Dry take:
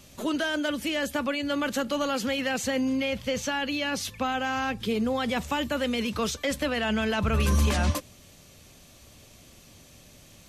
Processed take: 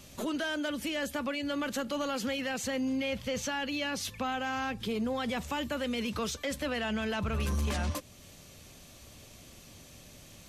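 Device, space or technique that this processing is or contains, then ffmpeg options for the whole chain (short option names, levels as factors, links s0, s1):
soft clipper into limiter: -af "asoftclip=type=tanh:threshold=0.119,alimiter=level_in=1.26:limit=0.0631:level=0:latency=1:release=290,volume=0.794"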